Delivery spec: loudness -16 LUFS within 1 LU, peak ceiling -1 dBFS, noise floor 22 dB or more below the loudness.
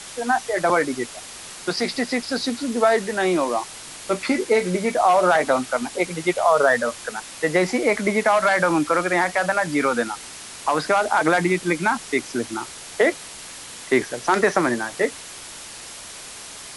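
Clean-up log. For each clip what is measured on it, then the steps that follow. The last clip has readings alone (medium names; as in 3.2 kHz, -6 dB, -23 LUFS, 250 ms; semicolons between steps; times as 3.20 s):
noise floor -38 dBFS; noise floor target -44 dBFS; loudness -21.5 LUFS; peak level -4.5 dBFS; loudness target -16.0 LUFS
-> noise reduction 6 dB, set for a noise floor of -38 dBFS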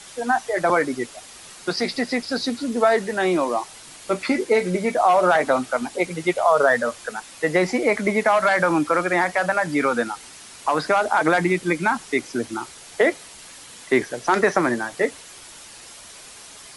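noise floor -43 dBFS; noise floor target -44 dBFS
-> noise reduction 6 dB, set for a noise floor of -43 dBFS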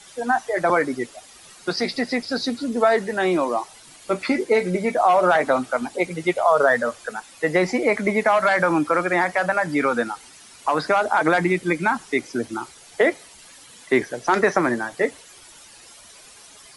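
noise floor -47 dBFS; loudness -21.5 LUFS; peak level -4.5 dBFS; loudness target -16.0 LUFS
-> trim +5.5 dB; peak limiter -1 dBFS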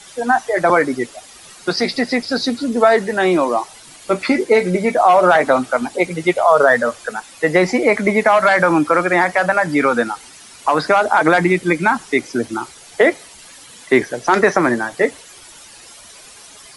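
loudness -16.0 LUFS; peak level -1.0 dBFS; noise floor -41 dBFS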